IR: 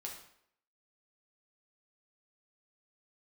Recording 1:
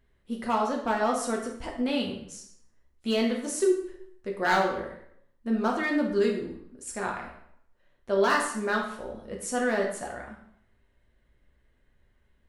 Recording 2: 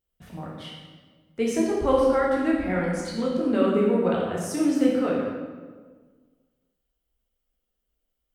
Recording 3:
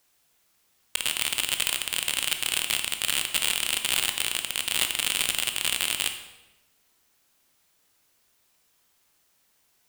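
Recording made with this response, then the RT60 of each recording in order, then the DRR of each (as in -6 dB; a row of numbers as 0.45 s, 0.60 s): 1; 0.70 s, 1.5 s, 1.0 s; -1.0 dB, -4.5 dB, 6.5 dB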